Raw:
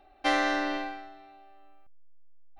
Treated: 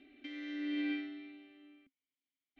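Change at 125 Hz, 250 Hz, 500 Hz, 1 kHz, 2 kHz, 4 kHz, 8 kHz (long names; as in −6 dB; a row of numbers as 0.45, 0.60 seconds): can't be measured, −3.0 dB, −20.0 dB, −32.5 dB, −15.0 dB, −12.5 dB, below −25 dB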